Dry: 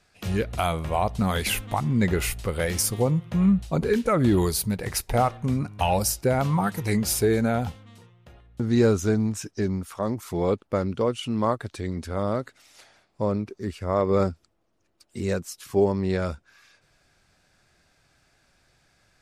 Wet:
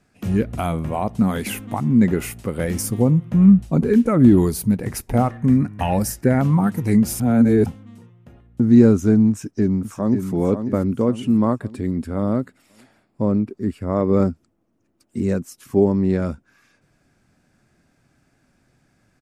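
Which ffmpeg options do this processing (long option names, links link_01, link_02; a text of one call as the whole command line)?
ffmpeg -i in.wav -filter_complex "[0:a]asettb=1/sr,asplit=3[link_01][link_02][link_03];[link_01]atrim=end=0.914[link_04];[link_02]atrim=start=0.91:end=2.59,asetpts=PTS-STARTPTS,afade=type=in:duration=0.004:curve=qsin,afade=type=out:start_time=1.676:duration=0.004:curve=qsin,highpass=frequency=140:poles=1[link_05];[link_03]atrim=start=2.586[link_06];[link_04][link_05]acrossfade=duration=0.004:curve1=hsin:curve2=qsin[link_07];[link_07][link_06]acrossfade=duration=0.004:curve1=qsin:curve2=hsin,asettb=1/sr,asplit=3[link_08][link_09][link_10];[link_08]atrim=end=5.304[link_11];[link_09]atrim=start=5.3:end=6.41,asetpts=PTS-STARTPTS,afade=type=in:duration=0.004:curve=qsin,afade=type=out:start_time=1.106:duration=0.004:curve=qsin,equalizer=frequency=1800:width=4.1:gain=13.5[link_12];[link_10]atrim=start=6.406[link_13];[link_11][link_12]acrossfade=duration=0.004:curve1=hsin:curve2=qsin[link_14];[link_14][link_13]acrossfade=duration=0.004:curve1=qsin:curve2=hsin,asplit=2[link_15][link_16];[link_16]afade=type=in:start_time=9.3:duration=0.01,afade=type=out:start_time=10.29:duration=0.01,aecho=0:1:540|1080|1620|2160|2700:0.421697|0.189763|0.0853935|0.0384271|0.0172922[link_17];[link_15][link_17]amix=inputs=2:normalize=0,asettb=1/sr,asplit=3[link_18][link_19][link_20];[link_18]atrim=end=11.264[link_21];[link_19]atrim=start=11.26:end=13.9,asetpts=PTS-STARTPTS,afade=type=in:duration=0.004:curve=qsin,afade=type=out:start_time=2.636:duration=0.004:curve=qsin,bandreject=frequency=6100:width=5.3[link_22];[link_20]atrim=start=13.896[link_23];[link_21][link_22]acrossfade=duration=0.004:curve1=hsin:curve2=qsin[link_24];[link_24][link_23]acrossfade=duration=0.004:curve1=qsin:curve2=hsin,asplit=3[link_25][link_26][link_27];[link_25]atrim=end=7.202[link_28];[link_26]atrim=start=7.198:end=7.662,asetpts=PTS-STARTPTS,areverse[link_29];[link_27]atrim=start=7.658[link_30];[link_28][link_29]acrossfade=duration=0.004:curve1=hsin:curve2=hsin[link_31];[link_31][link_30]acrossfade=duration=0.004:curve1=hsin:curve2=hsin,equalizer=frequency=125:width_type=o:width=1:gain=5,equalizer=frequency=250:width_type=o:width=1:gain=12,equalizer=frequency=4000:width_type=o:width=1:gain=-7,volume=-1dB" out.wav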